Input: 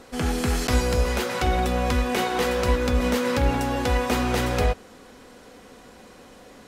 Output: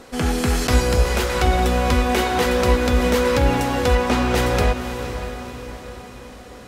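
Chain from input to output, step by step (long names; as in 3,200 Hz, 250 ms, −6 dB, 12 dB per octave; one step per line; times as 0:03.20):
0:03.95–0:04.35: high-frequency loss of the air 52 metres
on a send: feedback delay with all-pass diffusion 516 ms, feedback 50%, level −9.5 dB
on the sum: level +4 dB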